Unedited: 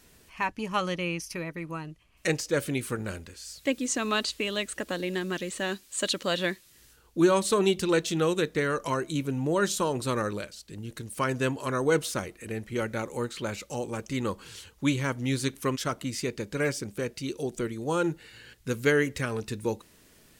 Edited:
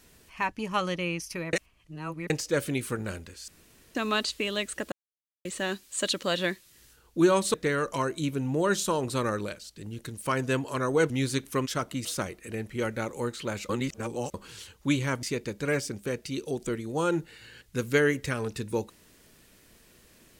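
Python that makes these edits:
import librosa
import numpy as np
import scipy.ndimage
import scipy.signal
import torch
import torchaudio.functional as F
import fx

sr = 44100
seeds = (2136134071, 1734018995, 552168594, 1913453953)

y = fx.edit(x, sr, fx.reverse_span(start_s=1.53, length_s=0.77),
    fx.room_tone_fill(start_s=3.48, length_s=0.47),
    fx.silence(start_s=4.92, length_s=0.53),
    fx.cut(start_s=7.54, length_s=0.92),
    fx.reverse_span(start_s=13.66, length_s=0.65),
    fx.move(start_s=15.2, length_s=0.95, to_s=12.02), tone=tone)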